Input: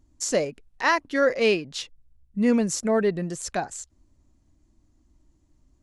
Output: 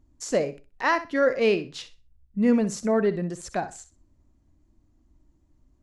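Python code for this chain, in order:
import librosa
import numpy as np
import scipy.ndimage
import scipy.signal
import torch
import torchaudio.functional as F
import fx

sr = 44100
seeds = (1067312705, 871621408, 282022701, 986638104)

y = fx.high_shelf(x, sr, hz=2900.0, db=-8.5)
y = fx.room_flutter(y, sr, wall_m=10.7, rt60_s=0.28)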